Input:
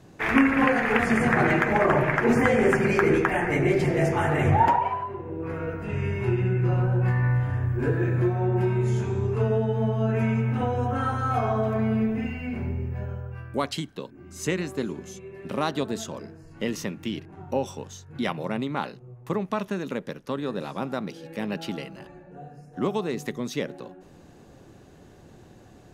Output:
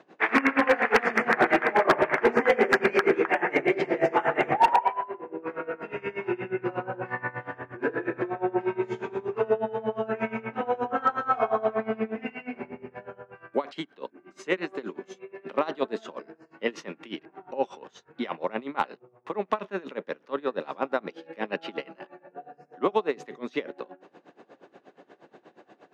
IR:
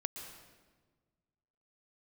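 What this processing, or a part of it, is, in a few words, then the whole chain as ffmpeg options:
helicopter radio: -af "highpass=150,highpass=380,lowpass=2.7k,aeval=exprs='val(0)*pow(10,-21*(0.5-0.5*cos(2*PI*8.4*n/s))/20)':c=same,asoftclip=type=hard:threshold=-19.5dB,volume=7.5dB"

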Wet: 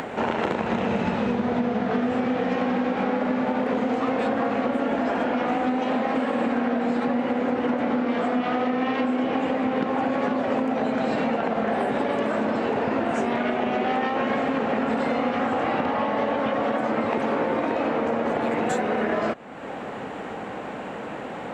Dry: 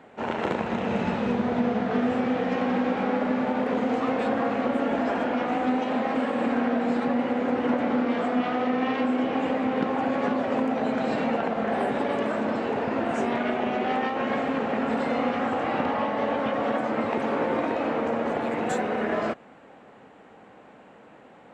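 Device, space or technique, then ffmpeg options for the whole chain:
upward and downward compression: -af "acompressor=mode=upward:threshold=-33dB:ratio=2.5,acompressor=threshold=-30dB:ratio=6,volume=9dB"

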